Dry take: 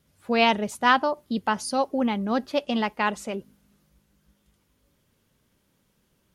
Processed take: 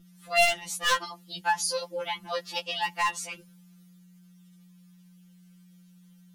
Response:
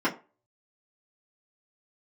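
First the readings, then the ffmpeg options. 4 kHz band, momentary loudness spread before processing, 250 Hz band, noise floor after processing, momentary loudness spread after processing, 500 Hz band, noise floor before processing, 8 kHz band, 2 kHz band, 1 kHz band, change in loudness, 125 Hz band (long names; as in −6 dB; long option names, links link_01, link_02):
+1.0 dB, 7 LU, −22.0 dB, −56 dBFS, 13 LU, −5.5 dB, −69 dBFS, +6.5 dB, −1.5 dB, −5.0 dB, −3.5 dB, −9.5 dB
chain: -af "tiltshelf=frequency=1300:gain=-8,aeval=exprs='val(0)+0.00398*(sin(2*PI*60*n/s)+sin(2*PI*2*60*n/s)/2+sin(2*PI*3*60*n/s)/3+sin(2*PI*4*60*n/s)/4+sin(2*PI*5*60*n/s)/5)':channel_layout=same,aeval=exprs='0.251*(abs(mod(val(0)/0.251+3,4)-2)-1)':channel_layout=same,afftfilt=real='re*2.83*eq(mod(b,8),0)':imag='im*2.83*eq(mod(b,8),0)':win_size=2048:overlap=0.75"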